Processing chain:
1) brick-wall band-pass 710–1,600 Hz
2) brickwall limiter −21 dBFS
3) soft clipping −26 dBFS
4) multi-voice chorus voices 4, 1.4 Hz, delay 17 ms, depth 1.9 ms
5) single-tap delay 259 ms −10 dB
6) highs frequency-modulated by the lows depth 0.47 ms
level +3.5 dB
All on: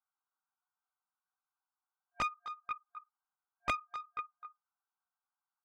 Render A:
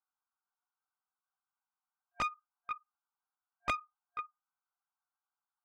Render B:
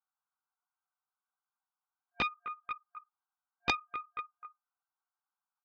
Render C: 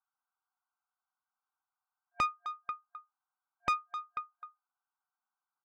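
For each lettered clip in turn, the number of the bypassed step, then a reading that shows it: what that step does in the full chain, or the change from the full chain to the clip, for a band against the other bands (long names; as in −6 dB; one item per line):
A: 5, change in momentary loudness spread −7 LU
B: 3, distortion level −15 dB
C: 4, change in momentary loudness spread +3 LU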